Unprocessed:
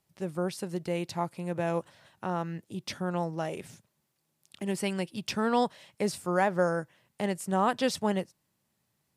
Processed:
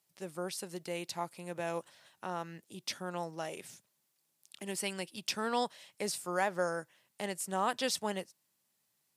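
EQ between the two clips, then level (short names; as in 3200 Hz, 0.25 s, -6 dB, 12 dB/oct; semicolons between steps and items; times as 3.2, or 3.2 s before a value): HPF 320 Hz 6 dB/oct; high shelf 2900 Hz +8.5 dB; -5.5 dB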